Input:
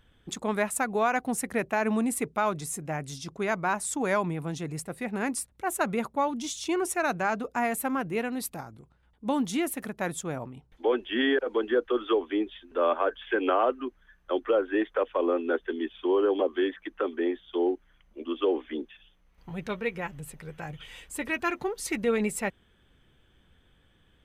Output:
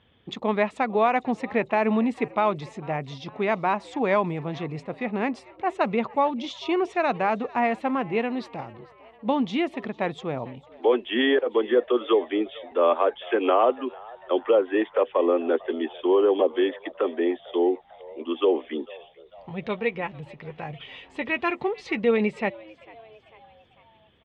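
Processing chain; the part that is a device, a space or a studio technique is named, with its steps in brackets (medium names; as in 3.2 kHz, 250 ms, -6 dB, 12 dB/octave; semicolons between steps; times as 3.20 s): frequency-shifting delay pedal into a guitar cabinet (frequency-shifting echo 448 ms, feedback 53%, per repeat +110 Hz, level -22.5 dB; cabinet simulation 110–3700 Hz, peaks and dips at 170 Hz -4 dB, 300 Hz -4 dB, 1.5 kHz -10 dB); trim +5.5 dB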